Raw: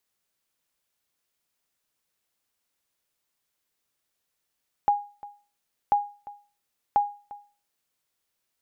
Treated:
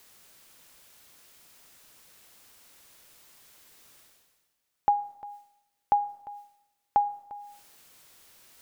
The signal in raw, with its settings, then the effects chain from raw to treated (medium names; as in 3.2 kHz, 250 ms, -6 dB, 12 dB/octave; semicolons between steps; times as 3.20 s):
sonar ping 820 Hz, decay 0.36 s, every 1.04 s, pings 3, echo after 0.35 s, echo -20 dB -13.5 dBFS
reverse; upward compressor, threshold -37 dBFS; reverse; algorithmic reverb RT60 0.96 s, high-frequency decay 0.75×, pre-delay 0 ms, DRR 19 dB